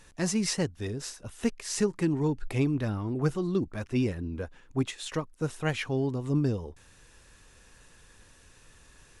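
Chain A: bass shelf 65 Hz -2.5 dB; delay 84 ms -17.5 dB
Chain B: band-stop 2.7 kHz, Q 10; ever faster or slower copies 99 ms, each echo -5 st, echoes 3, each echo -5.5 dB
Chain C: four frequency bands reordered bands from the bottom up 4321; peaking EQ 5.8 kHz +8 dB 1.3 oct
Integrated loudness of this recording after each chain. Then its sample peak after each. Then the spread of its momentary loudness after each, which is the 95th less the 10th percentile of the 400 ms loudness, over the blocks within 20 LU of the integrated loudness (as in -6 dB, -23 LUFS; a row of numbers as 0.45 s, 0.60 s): -30.5 LUFS, -30.0 LUFS, -20.0 LUFS; -13.5 dBFS, -13.5 dBFS, -6.0 dBFS; 8 LU, 9 LU, 8 LU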